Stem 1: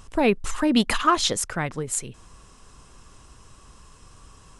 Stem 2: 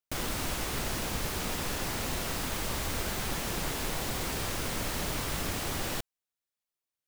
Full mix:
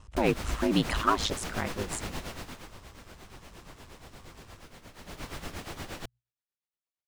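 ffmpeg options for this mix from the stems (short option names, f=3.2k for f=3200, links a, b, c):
-filter_complex "[0:a]aeval=exprs='val(0)*sin(2*PI*54*n/s)':c=same,volume=-3dB[a];[1:a]bandreject=f=60:t=h:w=6,bandreject=f=120:t=h:w=6,tremolo=f=8.5:d=0.73,adelay=50,volume=10.5dB,afade=t=out:st=2.16:d=0.58:silence=0.223872,afade=t=in:st=4.95:d=0.34:silence=0.298538[b];[a][b]amix=inputs=2:normalize=0,highshelf=f=7.9k:g=-11.5"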